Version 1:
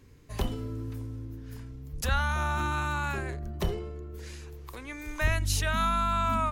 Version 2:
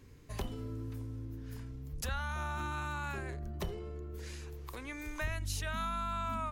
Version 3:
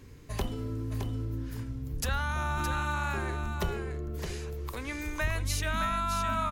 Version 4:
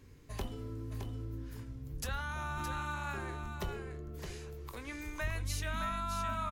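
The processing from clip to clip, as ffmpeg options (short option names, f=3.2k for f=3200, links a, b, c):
-af "acompressor=threshold=-39dB:ratio=2,volume=-1dB"
-af "aecho=1:1:616:0.447,volume=6dB"
-filter_complex "[0:a]asplit=2[a][b];[b]adelay=21,volume=-12dB[c];[a][c]amix=inputs=2:normalize=0,volume=-7dB"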